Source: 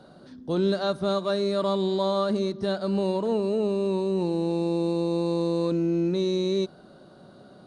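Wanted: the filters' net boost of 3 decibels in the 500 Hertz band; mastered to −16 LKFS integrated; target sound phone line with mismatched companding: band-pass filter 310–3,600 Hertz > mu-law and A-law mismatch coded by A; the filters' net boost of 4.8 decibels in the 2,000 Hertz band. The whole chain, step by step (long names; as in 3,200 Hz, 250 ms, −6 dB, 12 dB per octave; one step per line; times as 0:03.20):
band-pass filter 310–3,600 Hz
parametric band 500 Hz +5 dB
parametric band 2,000 Hz +7 dB
mu-law and A-law mismatch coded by A
level +9.5 dB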